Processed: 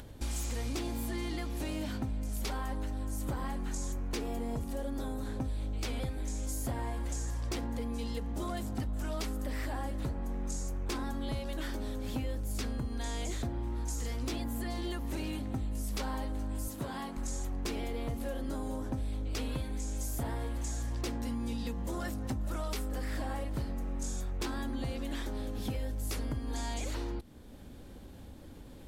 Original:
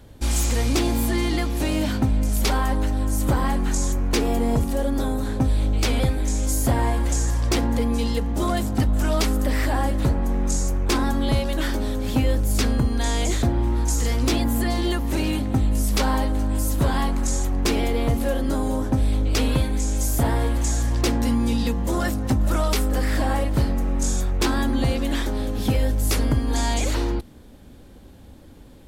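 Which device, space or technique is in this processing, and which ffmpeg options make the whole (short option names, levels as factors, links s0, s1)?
upward and downward compression: -filter_complex "[0:a]acompressor=mode=upward:threshold=0.0141:ratio=2.5,acompressor=threshold=0.0355:ratio=3,asettb=1/sr,asplit=3[s0][s1][s2];[s0]atrim=end=16.684[s3];[s1]atrim=start=16.68:end=17.17,asetpts=PTS-STARTPTS,afade=t=in:d=0.004:c=qsin,afade=t=out:st=0.486:d=0.004:c=qsin,highpass=120[s4];[s2]atrim=start=17.166[s5];[s3][s4]acrossfade=d=0.004:c1=hsin:c2=qsin[s6];[s6][s5]acrossfade=d=0.004:c1=qsin:c2=hsin,volume=0.501"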